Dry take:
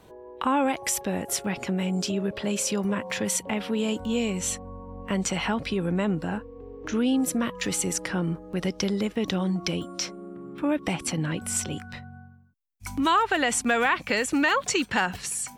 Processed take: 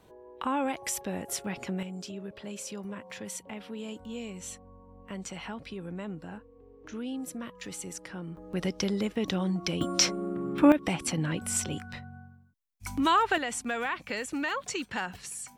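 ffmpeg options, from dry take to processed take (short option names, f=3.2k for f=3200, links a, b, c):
-af "asetnsamples=n=441:p=0,asendcmd='1.83 volume volume -12.5dB;8.37 volume volume -3dB;9.81 volume volume 7dB;10.72 volume volume -2dB;13.38 volume volume -9dB',volume=-6dB"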